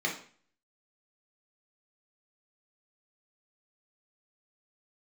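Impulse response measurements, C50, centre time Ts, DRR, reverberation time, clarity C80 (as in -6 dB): 7.5 dB, 23 ms, -2.5 dB, 0.45 s, 13.0 dB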